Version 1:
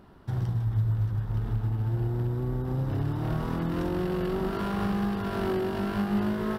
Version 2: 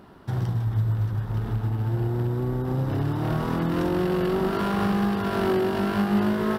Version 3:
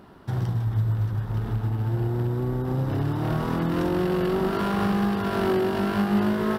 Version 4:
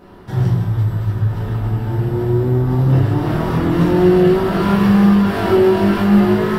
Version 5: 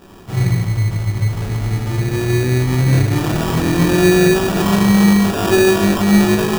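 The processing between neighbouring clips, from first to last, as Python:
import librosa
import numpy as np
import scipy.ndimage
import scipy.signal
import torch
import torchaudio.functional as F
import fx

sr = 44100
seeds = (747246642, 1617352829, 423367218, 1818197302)

y1 = fx.low_shelf(x, sr, hz=78.0, db=-11.5)
y1 = y1 * librosa.db_to_amplitude(6.0)
y2 = y1
y3 = fx.room_shoebox(y2, sr, seeds[0], volume_m3=110.0, walls='mixed', distance_m=1.9)
y4 = fx.sample_hold(y3, sr, seeds[1], rate_hz=2100.0, jitter_pct=0)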